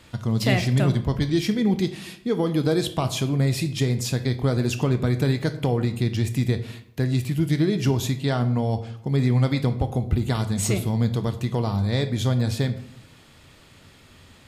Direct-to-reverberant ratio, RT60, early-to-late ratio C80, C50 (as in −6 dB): 10.0 dB, 0.70 s, 16.0 dB, 13.5 dB